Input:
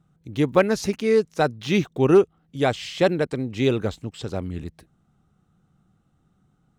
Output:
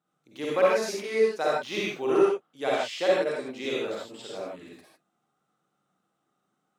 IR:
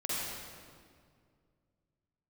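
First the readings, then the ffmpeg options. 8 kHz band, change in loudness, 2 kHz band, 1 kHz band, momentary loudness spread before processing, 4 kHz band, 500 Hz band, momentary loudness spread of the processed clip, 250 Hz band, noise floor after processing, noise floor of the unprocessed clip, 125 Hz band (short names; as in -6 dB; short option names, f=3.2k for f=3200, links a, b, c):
-3.0 dB, -4.5 dB, -2.5 dB, -2.5 dB, 14 LU, -2.5 dB, -3.5 dB, 15 LU, -10.0 dB, -78 dBFS, -66 dBFS, -20.0 dB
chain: -filter_complex "[0:a]highpass=440[a];[1:a]atrim=start_sample=2205,afade=t=out:st=0.21:d=0.01,atrim=end_sample=9702[b];[a][b]afir=irnorm=-1:irlink=0,volume=-6dB"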